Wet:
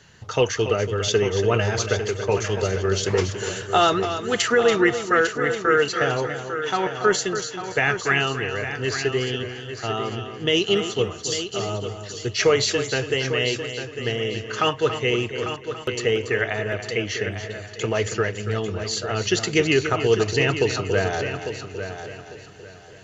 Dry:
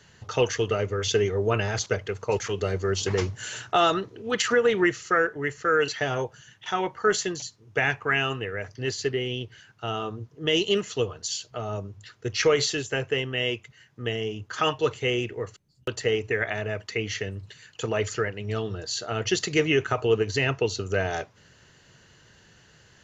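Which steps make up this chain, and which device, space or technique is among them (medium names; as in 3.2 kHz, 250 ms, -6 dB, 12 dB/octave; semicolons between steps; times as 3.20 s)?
multi-head tape echo (multi-head delay 283 ms, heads first and third, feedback 41%, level -10 dB; wow and flutter 21 cents); trim +3 dB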